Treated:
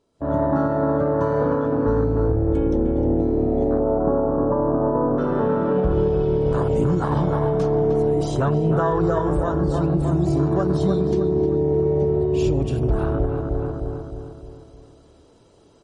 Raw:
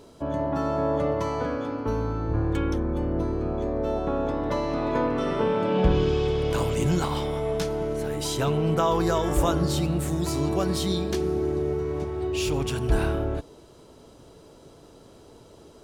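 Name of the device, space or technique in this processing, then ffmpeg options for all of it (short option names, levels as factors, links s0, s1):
low-bitrate web radio: -filter_complex "[0:a]afwtdn=0.0398,asettb=1/sr,asplit=3[s0][s1][s2];[s0]atrim=end=3.794[s3];[s1]atrim=start=3.79:end=5.18,asetpts=PTS-STARTPTS,afade=t=in:d=0.004:c=qsin,afade=t=out:st=1.386:d=0.004:c=qsin,lowpass=f=1200:w=0.5412,lowpass=f=1200:w=1.3066[s4];[s2]atrim=start=5.176[s5];[s3][s4]acrossfade=d=0.004:c1=hsin:c2=qsin[s6];[s6][s5]acrossfade=d=0.004:c1=qsin:c2=hsin,asplit=2[s7][s8];[s8]adelay=307,lowpass=f=2500:p=1,volume=0.473,asplit=2[s9][s10];[s10]adelay=307,lowpass=f=2500:p=1,volume=0.48,asplit=2[s11][s12];[s12]adelay=307,lowpass=f=2500:p=1,volume=0.48,asplit=2[s13][s14];[s14]adelay=307,lowpass=f=2500:p=1,volume=0.48,asplit=2[s15][s16];[s16]adelay=307,lowpass=f=2500:p=1,volume=0.48,asplit=2[s17][s18];[s18]adelay=307,lowpass=f=2500:p=1,volume=0.48[s19];[s7][s9][s11][s13][s15][s17][s19]amix=inputs=7:normalize=0,dynaudnorm=f=110:g=5:m=5.62,alimiter=limit=0.422:level=0:latency=1:release=225,volume=0.708" -ar 48000 -c:a libmp3lame -b:a 40k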